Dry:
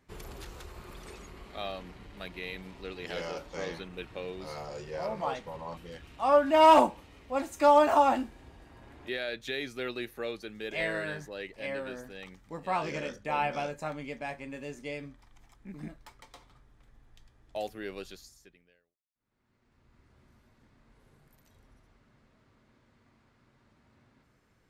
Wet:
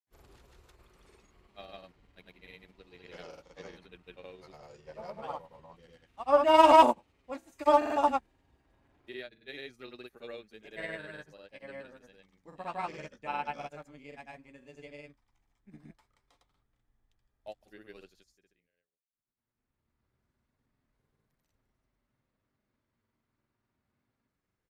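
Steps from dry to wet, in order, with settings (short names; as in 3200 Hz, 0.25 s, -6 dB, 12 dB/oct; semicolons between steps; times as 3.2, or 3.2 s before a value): grains, pitch spread up and down by 0 st; upward expander 1.5:1, over -50 dBFS; gain +2 dB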